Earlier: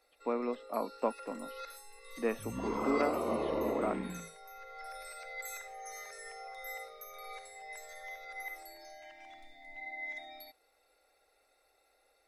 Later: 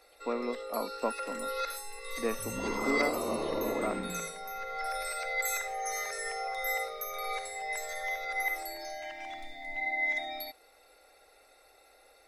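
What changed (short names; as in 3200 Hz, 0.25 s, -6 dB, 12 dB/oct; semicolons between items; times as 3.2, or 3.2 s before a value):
first sound +11.0 dB; reverb: on, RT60 2.8 s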